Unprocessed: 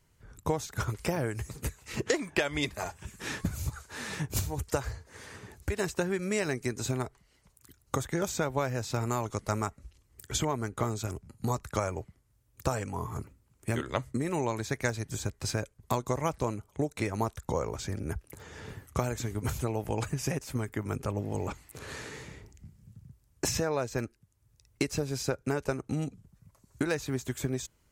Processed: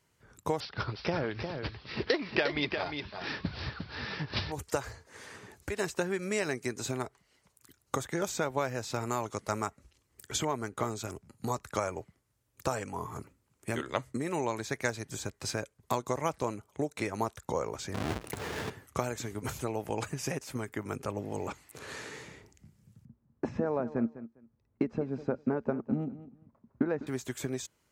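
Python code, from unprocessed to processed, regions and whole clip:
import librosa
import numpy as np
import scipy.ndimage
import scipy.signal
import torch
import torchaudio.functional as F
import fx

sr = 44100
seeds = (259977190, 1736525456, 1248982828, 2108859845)

y = fx.chain(x, sr, fx.low_shelf(hz=180.0, db=3.5),
    fx.echo_single(ms=354, db=-6.5),
    fx.resample_bad(factor=4, down='none', up='filtered'), at=(0.6, 4.52))
y = fx.chain(y, sr, fx.halfwave_hold(),
    fx.high_shelf(hz=6800.0, db=-5.5),
    fx.env_flatten(amount_pct=50), at=(17.94, 18.7))
y = fx.chain(y, sr, fx.lowpass(hz=1100.0, slope=12),
    fx.peak_eq(hz=230.0, db=15.0, octaves=0.3),
    fx.echo_feedback(ms=202, feedback_pct=18, wet_db=-14.5), at=(23.05, 27.07))
y = fx.highpass(y, sr, hz=230.0, slope=6)
y = fx.high_shelf(y, sr, hz=9500.0, db=-4.5)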